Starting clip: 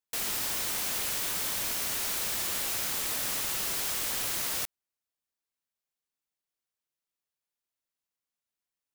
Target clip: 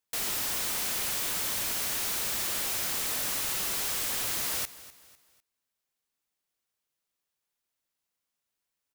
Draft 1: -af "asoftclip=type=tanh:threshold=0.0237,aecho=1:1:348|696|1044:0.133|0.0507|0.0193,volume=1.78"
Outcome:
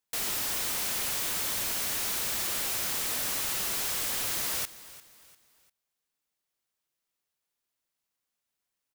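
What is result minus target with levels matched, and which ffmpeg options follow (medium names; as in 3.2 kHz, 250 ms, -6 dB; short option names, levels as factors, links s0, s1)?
echo 98 ms late
-af "asoftclip=type=tanh:threshold=0.0237,aecho=1:1:250|500|750:0.133|0.0507|0.0193,volume=1.78"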